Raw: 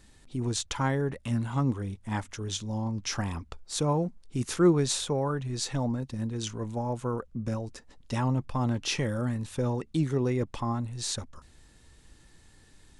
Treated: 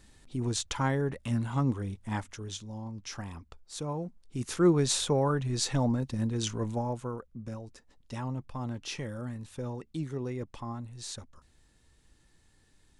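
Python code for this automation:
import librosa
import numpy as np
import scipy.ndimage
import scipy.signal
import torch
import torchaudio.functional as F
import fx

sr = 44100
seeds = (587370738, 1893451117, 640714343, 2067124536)

y = fx.gain(x, sr, db=fx.line((2.08, -1.0), (2.74, -8.5), (3.92, -8.5), (5.06, 2.0), (6.69, 2.0), (7.24, -8.0)))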